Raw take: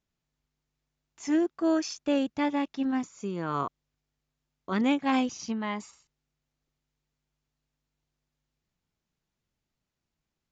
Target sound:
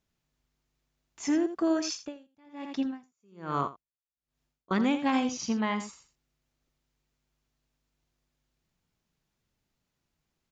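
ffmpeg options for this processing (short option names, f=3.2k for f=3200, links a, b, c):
-filter_complex "[0:a]acompressor=threshold=-27dB:ratio=6,aecho=1:1:83:0.299,asettb=1/sr,asplit=3[a][b][c];[a]atrim=end=1.934[d];[b]atrim=start=1.93:end=4.71,asetpts=PTS-STARTPTS,afade=t=in:d=0.004:c=qsin,afade=t=out:st=2.776:d=0.004:c=qsin,aeval=exprs='val(0)*pow(10,-36*(0.5-0.5*cos(2*PI*1.2*n/s))/20)':c=same[e];[c]atrim=start=4.706[f];[d][e]acrossfade=d=0.004:c1=hsin:c2=qsin[g];[g][f]acrossfade=d=0.004:c1=qsin:c2=hsin,volume=3.5dB"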